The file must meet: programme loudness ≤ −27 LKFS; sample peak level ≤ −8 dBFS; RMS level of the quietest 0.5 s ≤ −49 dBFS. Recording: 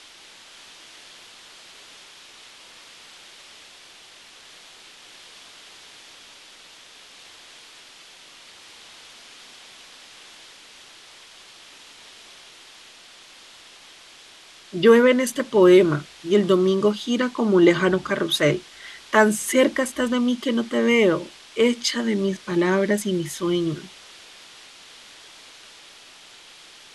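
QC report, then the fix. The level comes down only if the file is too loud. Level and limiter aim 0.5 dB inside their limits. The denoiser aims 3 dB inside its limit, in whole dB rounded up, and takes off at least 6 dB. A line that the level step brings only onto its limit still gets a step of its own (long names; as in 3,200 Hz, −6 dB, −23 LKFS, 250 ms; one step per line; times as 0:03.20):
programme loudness −20.0 LKFS: out of spec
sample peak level −4.0 dBFS: out of spec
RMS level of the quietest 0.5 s −48 dBFS: out of spec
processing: level −7.5 dB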